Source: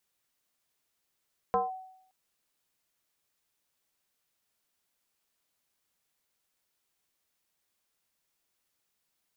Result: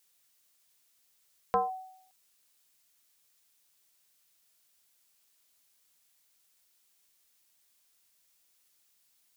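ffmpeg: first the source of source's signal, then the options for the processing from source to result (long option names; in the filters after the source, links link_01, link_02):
-f lavfi -i "aevalsrc='0.0891*pow(10,-3*t/0.72)*sin(2*PI*752*t+1.4*clip(1-t/0.17,0,1)*sin(2*PI*0.37*752*t))':duration=0.57:sample_rate=44100"
-af "highshelf=frequency=2400:gain=11"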